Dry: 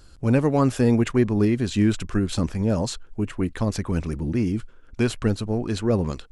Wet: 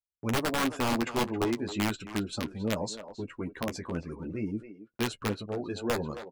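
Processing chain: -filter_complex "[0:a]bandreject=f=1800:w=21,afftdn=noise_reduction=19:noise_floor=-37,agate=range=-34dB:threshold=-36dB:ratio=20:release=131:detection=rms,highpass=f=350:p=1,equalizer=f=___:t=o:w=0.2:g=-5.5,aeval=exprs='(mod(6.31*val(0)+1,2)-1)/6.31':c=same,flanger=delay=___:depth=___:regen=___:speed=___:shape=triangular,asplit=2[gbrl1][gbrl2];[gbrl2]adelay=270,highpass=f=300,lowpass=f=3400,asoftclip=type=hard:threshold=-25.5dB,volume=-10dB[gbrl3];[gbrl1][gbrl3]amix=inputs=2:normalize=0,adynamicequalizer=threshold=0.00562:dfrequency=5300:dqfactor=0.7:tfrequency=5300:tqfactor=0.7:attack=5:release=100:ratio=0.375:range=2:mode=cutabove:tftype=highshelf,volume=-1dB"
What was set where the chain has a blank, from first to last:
3200, 8.4, 4.6, -20, 0.41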